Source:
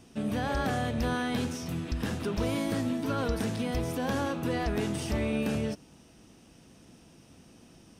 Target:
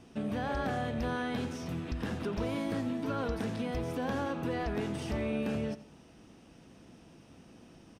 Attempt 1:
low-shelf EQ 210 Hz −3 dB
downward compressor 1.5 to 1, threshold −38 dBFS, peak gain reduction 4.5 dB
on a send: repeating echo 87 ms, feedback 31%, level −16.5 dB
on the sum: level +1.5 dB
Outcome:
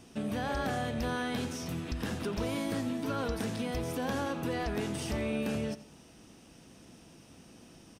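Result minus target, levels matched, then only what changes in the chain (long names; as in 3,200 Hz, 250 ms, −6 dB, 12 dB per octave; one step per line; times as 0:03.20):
8,000 Hz band +7.5 dB
add after downward compressor: high-shelf EQ 4,700 Hz −11.5 dB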